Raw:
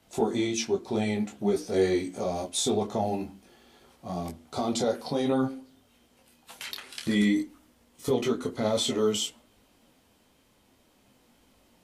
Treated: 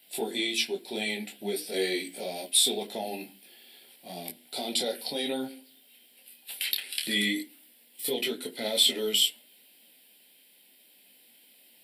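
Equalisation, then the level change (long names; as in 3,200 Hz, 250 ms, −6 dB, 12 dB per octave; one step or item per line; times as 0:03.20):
high-pass filter 160 Hz 24 dB per octave
spectral tilt +4.5 dB per octave
phaser with its sweep stopped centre 2,800 Hz, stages 4
+1.5 dB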